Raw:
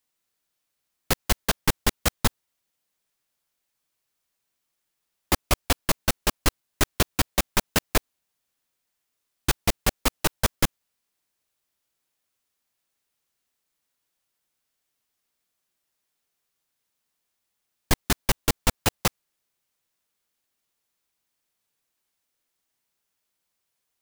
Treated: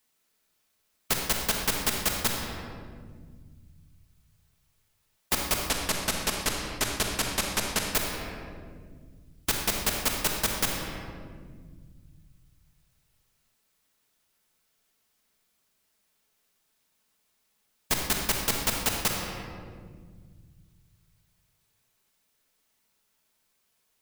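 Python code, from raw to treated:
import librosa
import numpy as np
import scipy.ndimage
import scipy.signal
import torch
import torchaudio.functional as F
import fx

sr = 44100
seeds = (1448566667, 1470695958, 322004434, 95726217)

y = fx.lowpass(x, sr, hz=10000.0, slope=12, at=(5.63, 7.91))
y = fx.room_shoebox(y, sr, seeds[0], volume_m3=1600.0, walls='mixed', distance_m=1.5)
y = fx.spectral_comp(y, sr, ratio=2.0)
y = F.gain(torch.from_numpy(y), -5.0).numpy()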